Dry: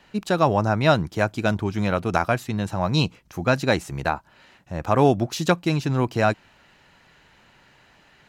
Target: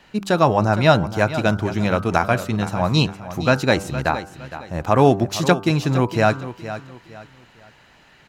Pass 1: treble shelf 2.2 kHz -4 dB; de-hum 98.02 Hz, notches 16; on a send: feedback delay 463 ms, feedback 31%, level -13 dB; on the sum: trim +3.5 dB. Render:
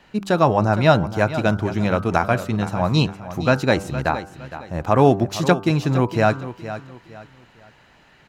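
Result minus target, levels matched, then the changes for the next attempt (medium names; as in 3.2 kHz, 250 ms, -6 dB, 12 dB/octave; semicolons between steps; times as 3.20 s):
4 kHz band -2.5 dB
remove: treble shelf 2.2 kHz -4 dB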